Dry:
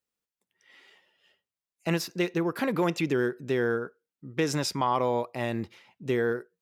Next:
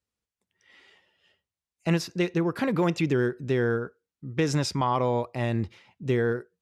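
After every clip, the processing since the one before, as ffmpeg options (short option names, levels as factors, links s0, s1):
-af "lowpass=9400,equalizer=f=65:t=o:w=1.9:g=15"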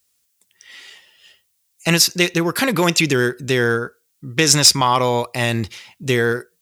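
-af "crystalizer=i=9:c=0,volume=2.37,asoftclip=hard,volume=0.422,volume=1.78"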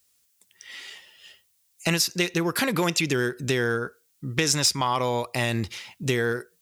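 -af "acompressor=threshold=0.0631:ratio=2.5"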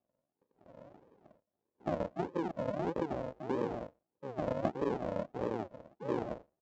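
-af "aresample=16000,acrusher=samples=32:mix=1:aa=0.000001:lfo=1:lforange=19.2:lforate=1.6,aresample=44100,bandpass=f=560:t=q:w=2.1:csg=0"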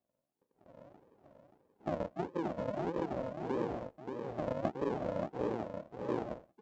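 -af "aecho=1:1:579:0.501,volume=0.841"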